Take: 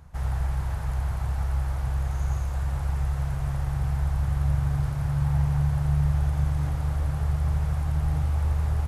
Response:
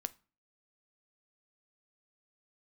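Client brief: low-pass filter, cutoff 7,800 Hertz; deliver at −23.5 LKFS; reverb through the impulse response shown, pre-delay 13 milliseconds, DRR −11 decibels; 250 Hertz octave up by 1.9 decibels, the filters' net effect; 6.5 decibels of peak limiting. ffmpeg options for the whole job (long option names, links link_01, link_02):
-filter_complex "[0:a]lowpass=7800,equalizer=frequency=250:width_type=o:gain=6,alimiter=limit=-19dB:level=0:latency=1,asplit=2[link_01][link_02];[1:a]atrim=start_sample=2205,adelay=13[link_03];[link_02][link_03]afir=irnorm=-1:irlink=0,volume=12.5dB[link_04];[link_01][link_04]amix=inputs=2:normalize=0,volume=-7dB"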